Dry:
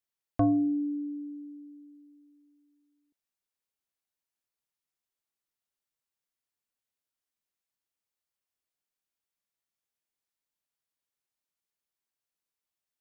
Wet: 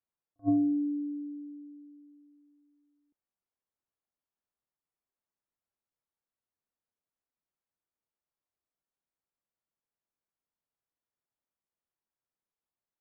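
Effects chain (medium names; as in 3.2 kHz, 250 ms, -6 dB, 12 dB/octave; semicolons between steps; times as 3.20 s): low-pass 1.3 kHz; on a send: reverse echo 36 ms -21 dB; on the sum: attacks held to a fixed rise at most 560 dB/s; trim +1 dB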